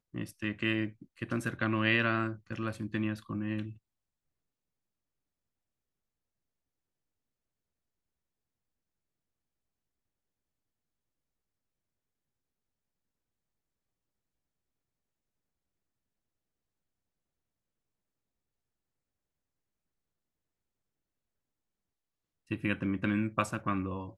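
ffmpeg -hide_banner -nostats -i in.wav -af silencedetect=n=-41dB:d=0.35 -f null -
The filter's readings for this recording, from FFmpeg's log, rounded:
silence_start: 3.72
silence_end: 22.51 | silence_duration: 18.79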